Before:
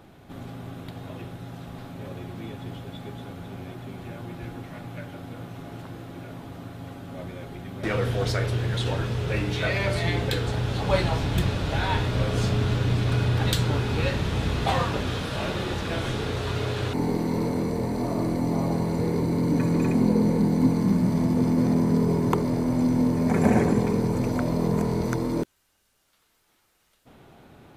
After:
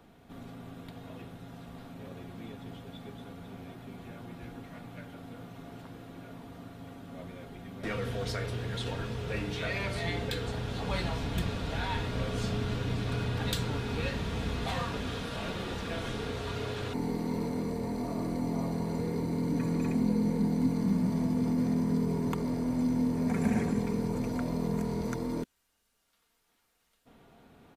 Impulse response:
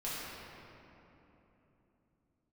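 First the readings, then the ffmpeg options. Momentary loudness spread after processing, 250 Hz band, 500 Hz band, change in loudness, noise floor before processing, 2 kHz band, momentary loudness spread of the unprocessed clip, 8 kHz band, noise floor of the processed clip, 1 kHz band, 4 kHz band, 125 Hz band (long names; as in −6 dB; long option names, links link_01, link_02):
17 LU, −6.5 dB, −8.5 dB, −7.5 dB, −67 dBFS, −7.0 dB, 17 LU, −6.5 dB, −73 dBFS, −8.0 dB, −6.5 dB, −9.0 dB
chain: -filter_complex "[0:a]aecho=1:1:4.3:0.34,acrossover=split=270|1300[link_01][link_02][link_03];[link_02]alimiter=limit=-23.5dB:level=0:latency=1:release=103[link_04];[link_01][link_04][link_03]amix=inputs=3:normalize=0,volume=-7dB"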